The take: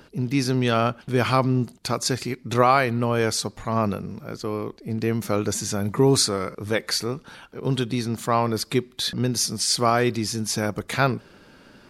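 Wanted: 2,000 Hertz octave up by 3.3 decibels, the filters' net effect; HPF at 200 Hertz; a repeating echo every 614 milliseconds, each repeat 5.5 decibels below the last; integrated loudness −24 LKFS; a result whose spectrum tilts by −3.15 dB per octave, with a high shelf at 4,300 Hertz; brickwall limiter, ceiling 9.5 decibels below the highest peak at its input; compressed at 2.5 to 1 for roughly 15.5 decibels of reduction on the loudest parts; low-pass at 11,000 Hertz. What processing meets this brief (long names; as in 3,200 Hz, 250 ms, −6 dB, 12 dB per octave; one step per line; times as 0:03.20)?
high-pass filter 200 Hz
low-pass filter 11,000 Hz
parametric band 2,000 Hz +3.5 dB
high-shelf EQ 4,300 Hz +4 dB
downward compressor 2.5 to 1, threshold −36 dBFS
brickwall limiter −25.5 dBFS
repeating echo 614 ms, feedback 53%, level −5.5 dB
level +12 dB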